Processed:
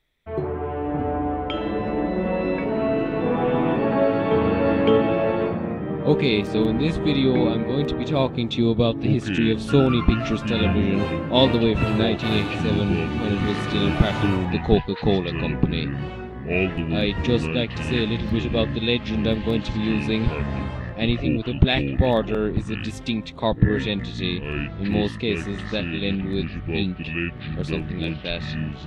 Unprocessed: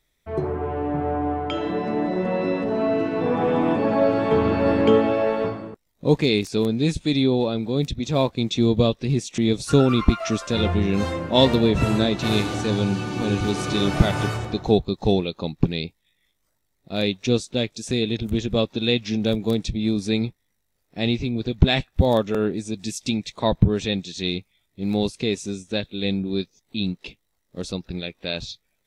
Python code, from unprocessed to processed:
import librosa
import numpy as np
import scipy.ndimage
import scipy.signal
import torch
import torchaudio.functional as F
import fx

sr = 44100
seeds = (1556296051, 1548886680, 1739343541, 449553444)

y = fx.echo_pitch(x, sr, ms=462, semitones=-6, count=2, db_per_echo=-6.0)
y = fx.high_shelf_res(y, sr, hz=4300.0, db=-8.5, q=1.5)
y = y * 10.0 ** (-1.0 / 20.0)